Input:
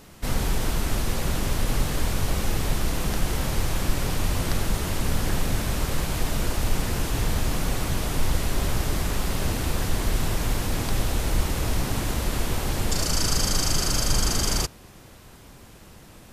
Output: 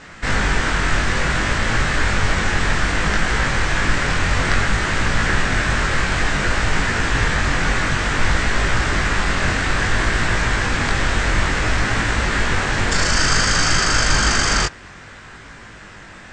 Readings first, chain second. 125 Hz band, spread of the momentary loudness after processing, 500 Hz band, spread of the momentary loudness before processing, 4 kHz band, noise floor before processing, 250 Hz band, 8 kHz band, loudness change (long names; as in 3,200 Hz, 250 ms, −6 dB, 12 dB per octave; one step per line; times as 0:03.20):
+4.5 dB, 4 LU, +6.0 dB, 4 LU, +7.5 dB, −48 dBFS, +5.0 dB, +4.0 dB, +8.0 dB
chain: Butterworth low-pass 8,400 Hz 72 dB per octave
parametric band 1,700 Hz +14.5 dB 1.2 octaves
chorus effect 0.58 Hz, delay 18 ms, depth 4.1 ms
level +7.5 dB